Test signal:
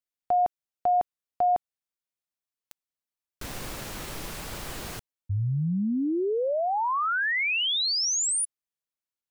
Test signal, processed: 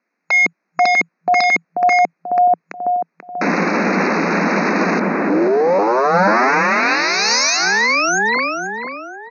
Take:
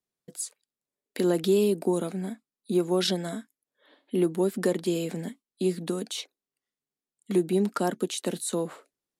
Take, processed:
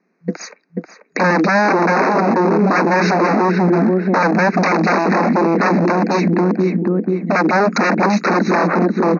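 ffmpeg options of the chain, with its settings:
ffmpeg -i in.wav -filter_complex "[0:a]acrossover=split=350|650|2900[link_01][link_02][link_03][link_04];[link_01]acontrast=73[link_05];[link_04]asoftclip=type=hard:threshold=-31dB[link_06];[link_05][link_02][link_03][link_06]amix=inputs=4:normalize=0,highshelf=frequency=3200:width_type=q:width=1.5:gain=-12.5,acompressor=threshold=-24dB:ratio=2:attack=11:release=138:knee=6:detection=peak,asplit=2[link_07][link_08];[link_08]adelay=487,lowpass=frequency=1700:poles=1,volume=-4.5dB,asplit=2[link_09][link_10];[link_10]adelay=487,lowpass=frequency=1700:poles=1,volume=0.46,asplit=2[link_11][link_12];[link_12]adelay=487,lowpass=frequency=1700:poles=1,volume=0.46,asplit=2[link_13][link_14];[link_14]adelay=487,lowpass=frequency=1700:poles=1,volume=0.46,asplit=2[link_15][link_16];[link_16]adelay=487,lowpass=frequency=1700:poles=1,volume=0.46,asplit=2[link_17][link_18];[link_18]adelay=487,lowpass=frequency=1700:poles=1,volume=0.46[link_19];[link_07][link_09][link_11][link_13][link_15][link_17][link_19]amix=inputs=7:normalize=0,aeval=exprs='0.0398*(abs(mod(val(0)/0.0398+3,4)-2)-1)':channel_layout=same,asuperstop=centerf=3200:order=8:qfactor=2.3,afftfilt=real='re*between(b*sr/4096,170,6700)':imag='im*between(b*sr/4096,170,6700)':win_size=4096:overlap=0.75,alimiter=level_in=32dB:limit=-1dB:release=50:level=0:latency=1,volume=-7dB" out.wav

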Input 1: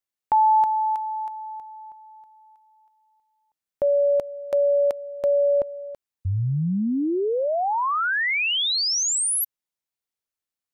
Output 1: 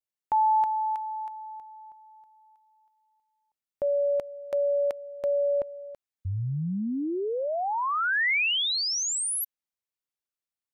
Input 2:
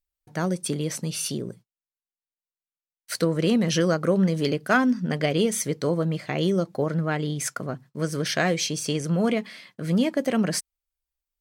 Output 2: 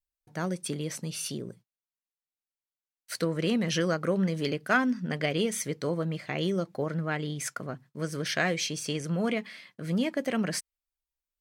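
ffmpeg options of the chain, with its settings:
ffmpeg -i in.wav -af "adynamicequalizer=threshold=0.0141:dfrequency=2100:dqfactor=0.93:tfrequency=2100:tqfactor=0.93:attack=5:release=100:ratio=0.375:range=2.5:mode=boostabove:tftype=bell,volume=-6dB" out.wav

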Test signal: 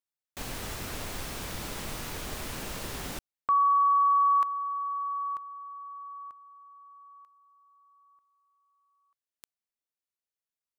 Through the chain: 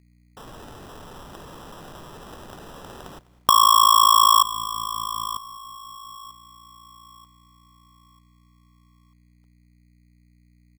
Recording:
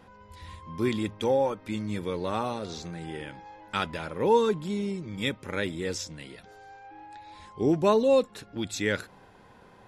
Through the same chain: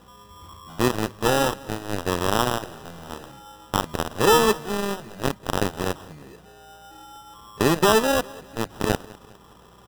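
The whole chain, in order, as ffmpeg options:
ffmpeg -i in.wav -filter_complex "[0:a]aeval=exprs='val(0)+0.00178*(sin(2*PI*60*n/s)+sin(2*PI*2*60*n/s)/2+sin(2*PI*3*60*n/s)/3+sin(2*PI*4*60*n/s)/4+sin(2*PI*5*60*n/s)/5)':channel_layout=same,acompressor=threshold=-27dB:ratio=12:attack=5.1:release=31:knee=6:detection=peak,equalizer=frequency=160:width_type=o:width=0.67:gain=5,equalizer=frequency=400:width_type=o:width=0.67:gain=6,equalizer=frequency=1000:width_type=o:width=0.67:gain=8,equalizer=frequency=4000:width_type=o:width=0.67:gain=-4,equalizer=frequency=10000:width_type=o:width=0.67:gain=-12,acrusher=samples=20:mix=1:aa=0.000001,aeval=exprs='0.237*(cos(1*acos(clip(val(0)/0.237,-1,1)))-cos(1*PI/2))+0.0188*(cos(5*acos(clip(val(0)/0.237,-1,1)))-cos(5*PI/2))+0.0596*(cos(7*acos(clip(val(0)/0.237,-1,1)))-cos(7*PI/2))':channel_layout=same,asplit=2[link_01][link_02];[link_02]aecho=0:1:203|406|609:0.0841|0.0395|0.0186[link_03];[link_01][link_03]amix=inputs=2:normalize=0,volume=6.5dB" out.wav

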